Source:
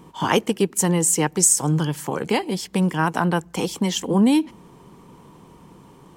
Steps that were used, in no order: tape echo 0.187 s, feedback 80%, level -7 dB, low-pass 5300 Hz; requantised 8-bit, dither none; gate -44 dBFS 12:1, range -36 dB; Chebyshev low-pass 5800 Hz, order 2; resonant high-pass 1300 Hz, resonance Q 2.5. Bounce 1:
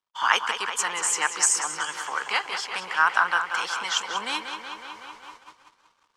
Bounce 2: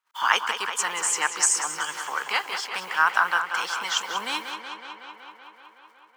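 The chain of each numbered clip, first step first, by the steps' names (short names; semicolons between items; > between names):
resonant high-pass > tape echo > requantised > Chebyshev low-pass > gate; Chebyshev low-pass > requantised > resonant high-pass > gate > tape echo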